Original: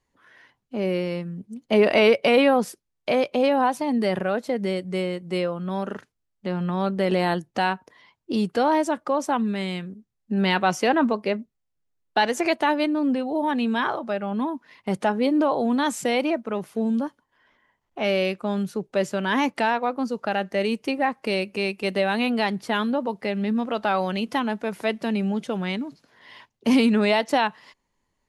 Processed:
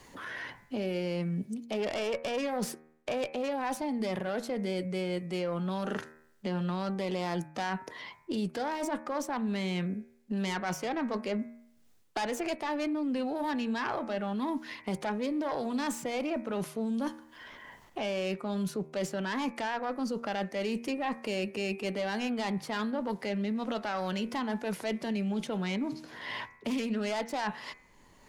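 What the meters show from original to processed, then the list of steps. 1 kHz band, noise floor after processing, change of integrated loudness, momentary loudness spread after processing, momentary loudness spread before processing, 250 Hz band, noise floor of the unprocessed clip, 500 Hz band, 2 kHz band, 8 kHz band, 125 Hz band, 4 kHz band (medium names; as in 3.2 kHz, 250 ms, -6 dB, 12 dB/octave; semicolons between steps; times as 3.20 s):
-10.5 dB, -61 dBFS, -10.0 dB, 6 LU, 9 LU, -8.5 dB, -77 dBFS, -10.5 dB, -10.0 dB, -4.5 dB, -6.0 dB, -9.5 dB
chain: self-modulated delay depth 0.17 ms; in parallel at -12 dB: one-sided clip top -29.5 dBFS; on the sum: transient shaper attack -3 dB, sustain +3 dB; reverse; compression 6:1, threshold -30 dBFS, peak gain reduction 16 dB; reverse; de-hum 78.04 Hz, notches 33; three bands compressed up and down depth 70%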